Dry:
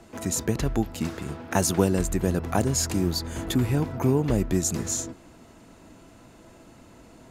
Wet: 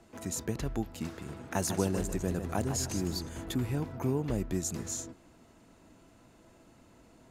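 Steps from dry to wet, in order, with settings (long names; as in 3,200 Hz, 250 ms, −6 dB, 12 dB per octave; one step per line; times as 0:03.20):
0:01.12–0:03.29: feedback echo with a swinging delay time 152 ms, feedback 36%, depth 131 cents, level −8.5 dB
level −8.5 dB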